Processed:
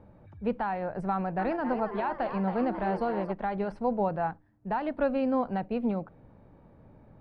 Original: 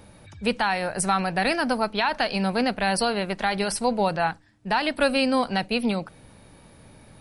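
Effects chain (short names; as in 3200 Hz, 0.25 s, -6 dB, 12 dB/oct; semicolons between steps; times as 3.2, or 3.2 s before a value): LPF 1000 Hz 12 dB/oct; 1.12–3.32 frequency-shifting echo 0.271 s, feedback 51%, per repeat +140 Hz, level -9.5 dB; gain -4 dB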